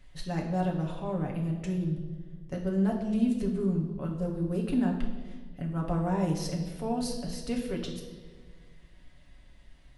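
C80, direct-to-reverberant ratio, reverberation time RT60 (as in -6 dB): 8.5 dB, -1.5 dB, 1.6 s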